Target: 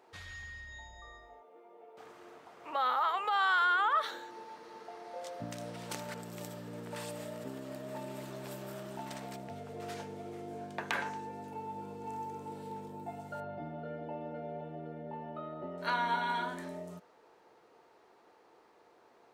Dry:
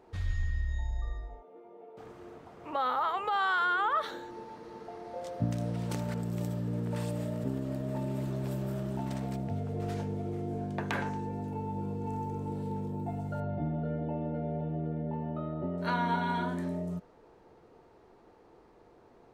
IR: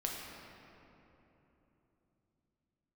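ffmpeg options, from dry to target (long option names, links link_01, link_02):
-af "highpass=frequency=1000:poles=1,volume=2.5dB"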